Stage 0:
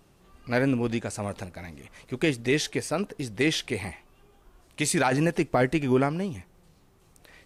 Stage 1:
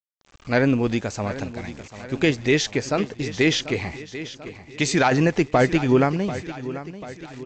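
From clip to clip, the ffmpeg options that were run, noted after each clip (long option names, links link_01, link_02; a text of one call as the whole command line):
ffmpeg -i in.wav -af "aresample=16000,aeval=exprs='val(0)*gte(abs(val(0)),0.00376)':channel_layout=same,aresample=44100,aecho=1:1:740|1480|2220|2960|3700:0.2|0.106|0.056|0.0297|0.0157,volume=5dB" out.wav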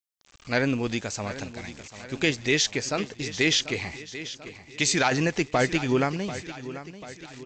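ffmpeg -i in.wav -af "highshelf=frequency=2100:gain=10.5,volume=-6.5dB" out.wav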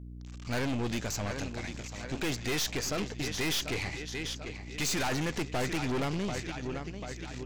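ffmpeg -i in.wav -af "acontrast=35,aeval=exprs='val(0)+0.0141*(sin(2*PI*60*n/s)+sin(2*PI*2*60*n/s)/2+sin(2*PI*3*60*n/s)/3+sin(2*PI*4*60*n/s)/4+sin(2*PI*5*60*n/s)/5)':channel_layout=same,aeval=exprs='(tanh(20*val(0)+0.55)-tanh(0.55))/20':channel_layout=same,volume=-3dB" out.wav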